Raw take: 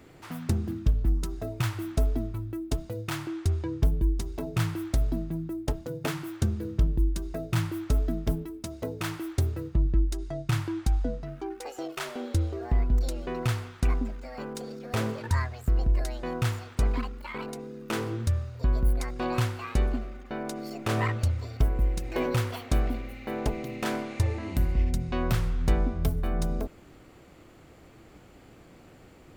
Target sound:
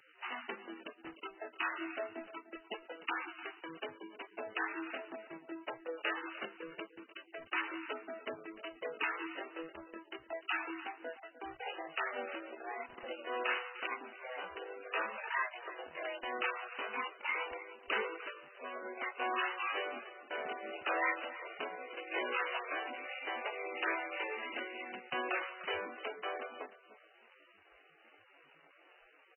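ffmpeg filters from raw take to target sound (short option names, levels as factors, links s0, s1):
-filter_complex "[0:a]highpass=f=400:w=0.5412,highpass=f=400:w=1.3066,asplit=3[s0][s1][s2];[s0]afade=t=out:st=6.85:d=0.02[s3];[s1]equalizer=f=640:t=o:w=2.5:g=-9.5,afade=t=in:st=6.85:d=0.02,afade=t=out:st=7.4:d=0.02[s4];[s2]afade=t=in:st=7.4:d=0.02[s5];[s3][s4][s5]amix=inputs=3:normalize=0,asplit=2[s6][s7];[s7]acompressor=threshold=0.00447:ratio=6,volume=0.841[s8];[s6][s8]amix=inputs=2:normalize=0,asoftclip=type=tanh:threshold=0.0335,crystalizer=i=9.5:c=0,flanger=delay=19:depth=5.2:speed=0.26,aeval=exprs='sgn(val(0))*max(abs(val(0))-0.0075,0)':c=same,asettb=1/sr,asplit=3[s9][s10][s11];[s9]atrim=end=25.304[s12];[s10]atrim=start=25.3:end=26.25,asetpts=PTS-STARTPTS,afade=t=in:d=0.004:c=qsin,afade=t=out:st=0.946:d=0.004:c=qsin,asplit=2[s13][s14];[s14]adelay=25,volume=0.299[s15];[s13][s15]amix=inputs=2:normalize=0,atrim=end_sample=41895[s16];[s11]atrim=start=26.246[s17];[s12][s16]acrossfade=d=0.004:c1=hsin:c2=qsin[s18];[s18][s17]acrossfade=d=0.004:c1=qsin:c2=hsin,asplit=2[s19][s20];[s20]aecho=0:1:301|602:0.168|0.0336[s21];[s19][s21]amix=inputs=2:normalize=0,aresample=11025,aresample=44100" -ar 16000 -c:a libmp3lame -b:a 8k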